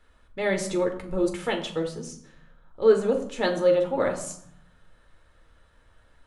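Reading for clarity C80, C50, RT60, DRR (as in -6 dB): 13.0 dB, 10.0 dB, 0.70 s, 3.0 dB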